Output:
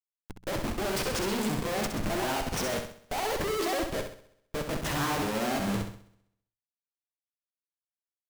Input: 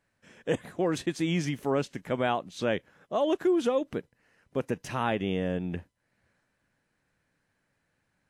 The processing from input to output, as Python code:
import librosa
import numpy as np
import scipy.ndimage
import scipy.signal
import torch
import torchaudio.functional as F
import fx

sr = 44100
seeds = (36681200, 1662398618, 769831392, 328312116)

p1 = fx.pitch_ramps(x, sr, semitones=7.5, every_ms=373)
p2 = fx.schmitt(p1, sr, flips_db=-43.5)
p3 = fx.hum_notches(p2, sr, base_hz=60, count=3)
p4 = p3 + fx.room_flutter(p3, sr, wall_m=11.2, rt60_s=0.77, dry=0)
p5 = fx.upward_expand(p4, sr, threshold_db=-48.0, expansion=1.5)
y = F.gain(torch.from_numpy(p5), 3.0).numpy()